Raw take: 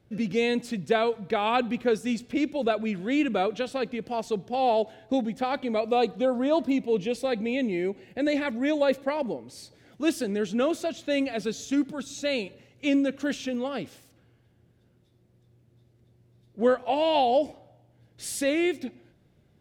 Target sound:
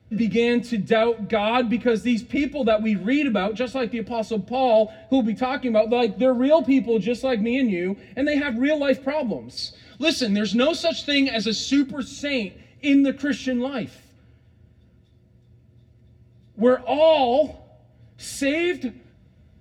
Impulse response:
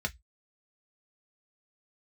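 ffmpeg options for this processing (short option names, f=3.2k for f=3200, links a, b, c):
-filter_complex "[0:a]asettb=1/sr,asplit=3[a][b][c];[a]atrim=end=9.574[d];[b]atrim=start=9.57:end=11.82,asetpts=PTS-STARTPTS,afade=t=in:d=0.004:c=qsin,afade=t=out:st=2.246:d=0.004:c=qsin,equalizer=f=4.2k:w=1.4:g=14.5[e];[c]atrim=start=11.816[f];[d][e]acrossfade=d=0.004:c1=hsin:c2=qsin[g];[g][f]acrossfade=d=0.004:c1=qsin:c2=hsin[h];[1:a]atrim=start_sample=2205[i];[h][i]afir=irnorm=-1:irlink=0"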